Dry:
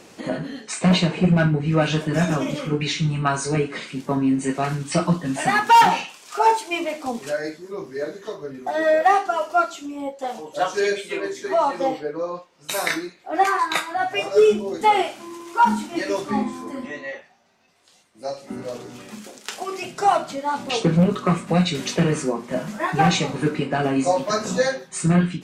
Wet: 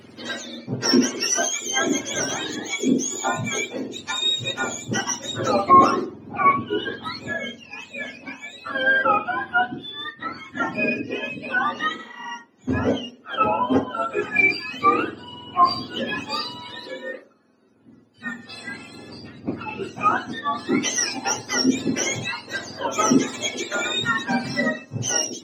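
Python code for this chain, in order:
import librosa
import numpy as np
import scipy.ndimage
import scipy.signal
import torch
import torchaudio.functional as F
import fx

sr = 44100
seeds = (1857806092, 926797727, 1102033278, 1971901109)

y = fx.octave_mirror(x, sr, pivot_hz=1000.0)
y = fx.low_shelf_res(y, sr, hz=200.0, db=-6.0, q=3.0)
y = fx.spec_repair(y, sr, seeds[0], start_s=12.01, length_s=0.26, low_hz=440.0, high_hz=9600.0, source='both')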